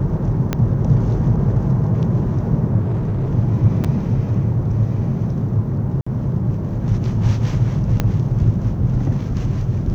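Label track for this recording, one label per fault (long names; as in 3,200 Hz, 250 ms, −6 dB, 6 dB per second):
0.530000	0.530000	click −6 dBFS
2.800000	3.330000	clipping −17 dBFS
3.840000	3.850000	drop-out 5.8 ms
6.010000	6.070000	drop-out 55 ms
8.000000	8.000000	click −5 dBFS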